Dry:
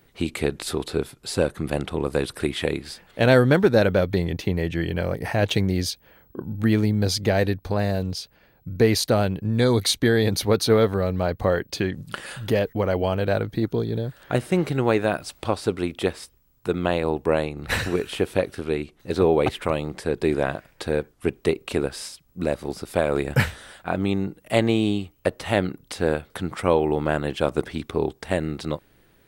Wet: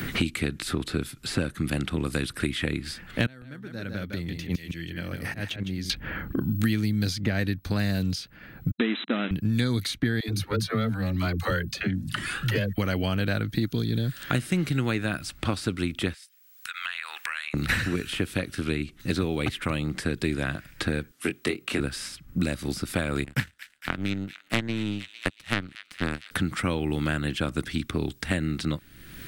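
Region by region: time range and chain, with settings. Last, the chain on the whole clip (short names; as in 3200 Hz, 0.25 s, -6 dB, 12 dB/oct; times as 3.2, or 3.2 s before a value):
3.26–5.9 auto swell 0.174 s + flipped gate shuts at -24 dBFS, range -28 dB + echo 0.156 s -8.5 dB
8.71–9.31 level-crossing sampler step -25 dBFS + brick-wall FIR band-pass 200–4000 Hz
10.2–12.78 dispersion lows, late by 81 ms, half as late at 340 Hz + cascading flanger rising 1 Hz
16.14–17.54 HPF 1500 Hz 24 dB/oct + compressor 4:1, threshold -51 dBFS
21.11–21.8 HPF 300 Hz + doubler 22 ms -6 dB
23.24–26.31 power-law curve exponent 2 + thin delay 0.228 s, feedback 63%, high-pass 2000 Hz, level -16 dB
whole clip: band shelf 630 Hz -11.5 dB; three-band squash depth 100%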